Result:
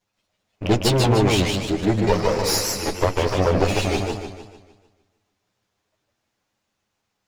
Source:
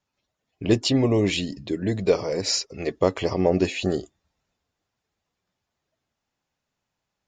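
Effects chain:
lower of the sound and its delayed copy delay 9.6 ms
in parallel at −2 dB: brickwall limiter −19.5 dBFS, peak gain reduction 10.5 dB
on the sum: feedback echo with a swinging delay time 151 ms, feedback 46%, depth 163 cents, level −3 dB

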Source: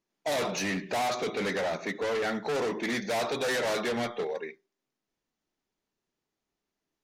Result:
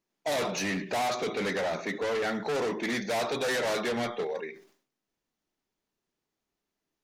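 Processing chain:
level that may fall only so fast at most 120 dB per second

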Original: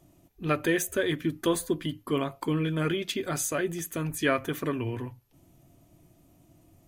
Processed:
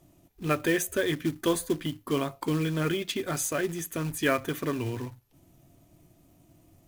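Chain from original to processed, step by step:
floating-point word with a short mantissa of 2 bits

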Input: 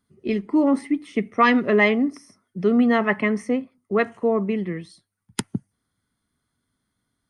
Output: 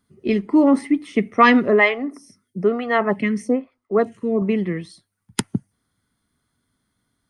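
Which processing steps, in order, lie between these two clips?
0:01.68–0:04.42: phaser with staggered stages 1.1 Hz
level +4 dB

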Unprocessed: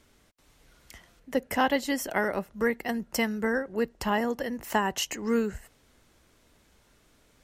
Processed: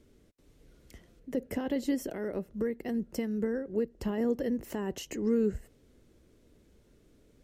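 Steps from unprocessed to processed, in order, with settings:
0:01.94–0:03.99: downward compressor 6 to 1, threshold −29 dBFS, peak gain reduction 9 dB
brickwall limiter −22.5 dBFS, peak gain reduction 11.5 dB
low shelf with overshoot 610 Hz +10.5 dB, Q 1.5
level −8.5 dB

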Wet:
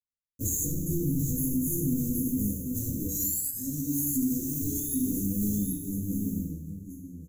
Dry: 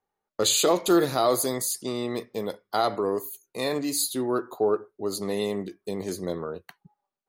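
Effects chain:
fade-out on the ending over 2.33 s
sound drawn into the spectrogram rise, 0:03.08–0:04.94, 1,300–3,800 Hz −20 dBFS
high shelf with overshoot 1,900 Hz −10.5 dB, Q 1.5
leveller curve on the samples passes 5
noise gate −15 dBFS, range −15 dB
in parallel at −8.5 dB: wrap-around overflow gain 24.5 dB
on the sum: EQ curve with evenly spaced ripples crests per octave 1.1, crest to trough 16 dB
on a send: single-tap delay 778 ms −8.5 dB
on the sum: coupled-rooms reverb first 0.73 s, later 2.3 s, DRR −6 dB
downward compressor 6 to 1, threshold −11 dBFS, peak gain reduction 14.5 dB
inverse Chebyshev band-stop filter 640–3,200 Hz, stop band 60 dB
brickwall limiter −19 dBFS, peak gain reduction 5.5 dB

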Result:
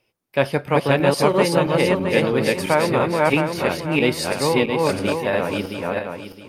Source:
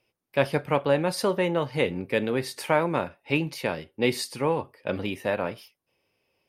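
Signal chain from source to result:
feedback delay that plays each chunk backwards 333 ms, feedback 51%, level 0 dB
level +4 dB

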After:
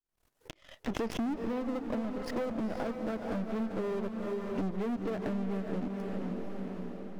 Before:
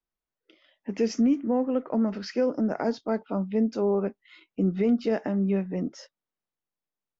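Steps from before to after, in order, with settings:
gain on one half-wave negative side −12 dB
treble cut that deepens with the level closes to 2,500 Hz, closed at −26 dBFS
transient designer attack +6 dB, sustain −10 dB
high-shelf EQ 5,300 Hz +6.5 dB
leveller curve on the samples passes 5
soft clipping −14.5 dBFS, distortion −16 dB
feedback delay with all-pass diffusion 473 ms, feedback 42%, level −6.5 dB
downward compressor 6 to 1, threshold −29 dBFS, peak gain reduction 14 dB
high-shelf EQ 2,200 Hz −7.5 dB
background raised ahead of every attack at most 120 dB per second
level −3 dB

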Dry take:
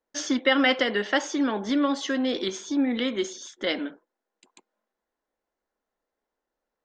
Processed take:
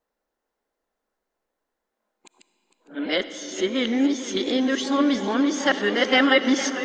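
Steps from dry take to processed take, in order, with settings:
played backwards from end to start
comb and all-pass reverb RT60 5 s, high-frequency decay 0.65×, pre-delay 20 ms, DRR 11 dB
feedback echo with a swinging delay time 456 ms, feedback 76%, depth 95 cents, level −14 dB
level +3 dB

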